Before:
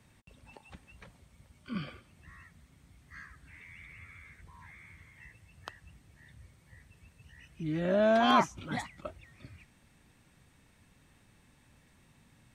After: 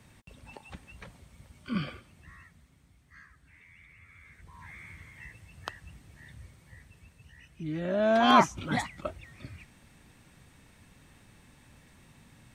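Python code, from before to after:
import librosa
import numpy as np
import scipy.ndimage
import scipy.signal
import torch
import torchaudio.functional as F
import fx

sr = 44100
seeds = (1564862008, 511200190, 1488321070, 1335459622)

y = fx.gain(x, sr, db=fx.line((1.81, 5.5), (3.15, -5.0), (4.02, -5.0), (4.76, 6.0), (6.35, 6.0), (7.93, -2.0), (8.45, 6.0)))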